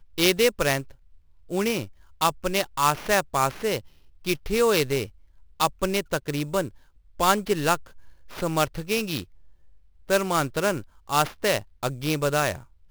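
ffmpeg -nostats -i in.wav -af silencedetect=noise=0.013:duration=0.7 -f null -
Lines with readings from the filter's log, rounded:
silence_start: 9.23
silence_end: 10.09 | silence_duration: 0.86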